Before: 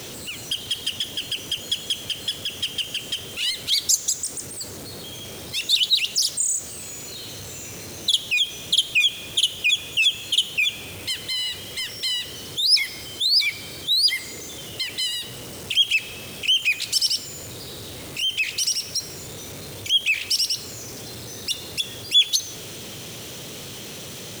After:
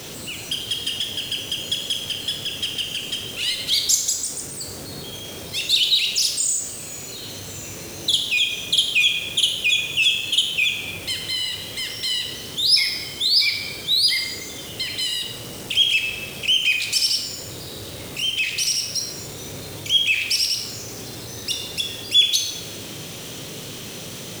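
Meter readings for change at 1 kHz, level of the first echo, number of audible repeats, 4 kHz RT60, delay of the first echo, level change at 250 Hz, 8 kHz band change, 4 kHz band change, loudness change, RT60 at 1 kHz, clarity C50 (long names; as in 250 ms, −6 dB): +2.0 dB, no echo audible, no echo audible, 0.95 s, no echo audible, +3.0 dB, +1.5 dB, +1.5 dB, +1.5 dB, 1.3 s, 5.0 dB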